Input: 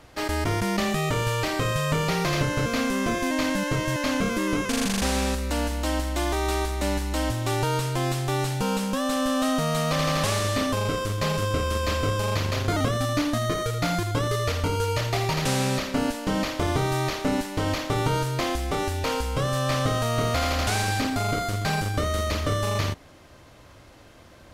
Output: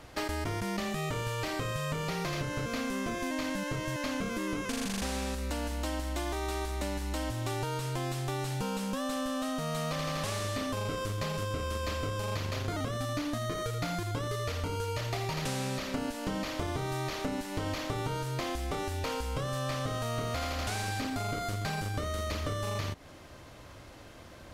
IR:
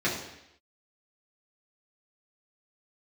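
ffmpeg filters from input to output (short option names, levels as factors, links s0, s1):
-af "acompressor=threshold=0.0282:ratio=6"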